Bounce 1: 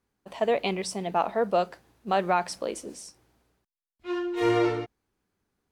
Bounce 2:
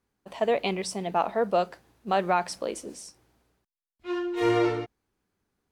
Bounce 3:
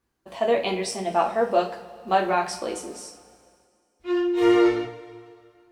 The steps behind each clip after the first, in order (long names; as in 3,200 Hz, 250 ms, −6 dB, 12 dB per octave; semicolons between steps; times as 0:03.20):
no processing that can be heard
coupled-rooms reverb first 0.3 s, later 2.2 s, from −19 dB, DRR 0 dB